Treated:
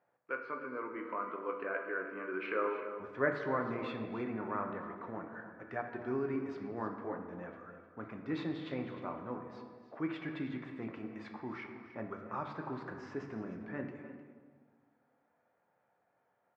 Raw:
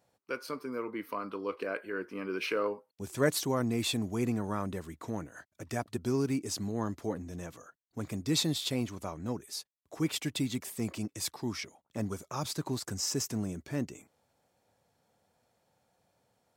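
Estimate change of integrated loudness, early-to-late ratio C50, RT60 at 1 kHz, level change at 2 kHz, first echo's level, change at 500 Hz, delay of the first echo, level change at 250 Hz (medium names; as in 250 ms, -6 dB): -5.5 dB, 5.0 dB, 1.4 s, 0.0 dB, -18.0 dB, -3.0 dB, 255 ms, -6.0 dB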